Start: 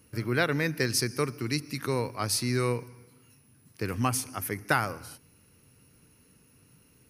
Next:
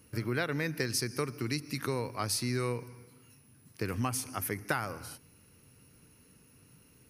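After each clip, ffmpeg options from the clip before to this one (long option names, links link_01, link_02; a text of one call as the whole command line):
ffmpeg -i in.wav -af "acompressor=threshold=-30dB:ratio=2.5" out.wav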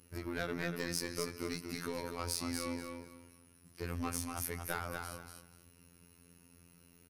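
ffmpeg -i in.wav -af "asoftclip=type=tanh:threshold=-27.5dB,aecho=1:1:241|482|723:0.562|0.118|0.0248,afftfilt=real='hypot(re,im)*cos(PI*b)':imag='0':win_size=2048:overlap=0.75" out.wav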